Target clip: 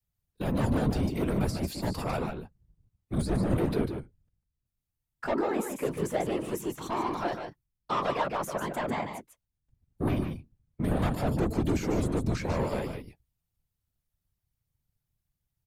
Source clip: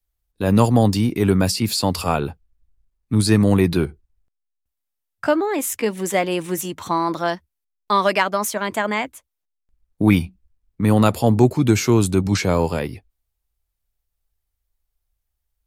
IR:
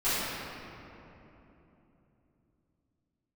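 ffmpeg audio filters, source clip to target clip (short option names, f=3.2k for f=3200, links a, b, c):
-filter_complex "[0:a]acrossover=split=1500[a][b];[b]acompressor=threshold=-36dB:ratio=6[c];[a][c]amix=inputs=2:normalize=0,asoftclip=type=tanh:threshold=-17.5dB,aecho=1:1:148:0.473,afftfilt=real='hypot(re,im)*cos(2*PI*random(0))':imag='hypot(re,im)*sin(2*PI*random(1))':win_size=512:overlap=0.75"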